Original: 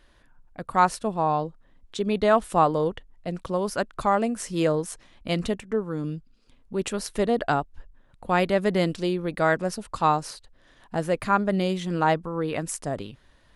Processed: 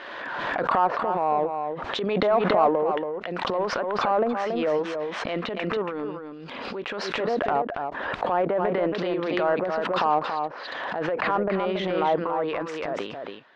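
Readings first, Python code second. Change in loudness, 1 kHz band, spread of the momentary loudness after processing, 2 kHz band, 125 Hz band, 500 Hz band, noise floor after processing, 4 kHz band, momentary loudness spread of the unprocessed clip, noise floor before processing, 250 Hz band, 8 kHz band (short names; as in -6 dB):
0.0 dB, +1.0 dB, 9 LU, +1.5 dB, -7.0 dB, +1.5 dB, -39 dBFS, +2.0 dB, 13 LU, -58 dBFS, -2.5 dB, under -10 dB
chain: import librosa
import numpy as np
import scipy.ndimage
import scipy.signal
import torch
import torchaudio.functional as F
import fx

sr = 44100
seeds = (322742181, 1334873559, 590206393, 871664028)

p1 = scipy.signal.sosfilt(scipy.signal.butter(2, 570.0, 'highpass', fs=sr, output='sos'), x)
p2 = fx.env_lowpass_down(p1, sr, base_hz=1000.0, full_db=-22.5)
p3 = fx.high_shelf(p2, sr, hz=4400.0, db=-11.5)
p4 = fx.transient(p3, sr, attack_db=-9, sustain_db=9)
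p5 = 10.0 ** (-27.5 / 20.0) * np.tanh(p4 / 10.0 ** (-27.5 / 20.0))
p6 = p4 + (p5 * librosa.db_to_amplitude(-5.0))
p7 = fx.air_absorb(p6, sr, metres=210.0)
p8 = p7 + 10.0 ** (-6.0 / 20.0) * np.pad(p7, (int(280 * sr / 1000.0), 0))[:len(p7)]
p9 = fx.pre_swell(p8, sr, db_per_s=26.0)
y = p9 * librosa.db_to_amplitude(2.5)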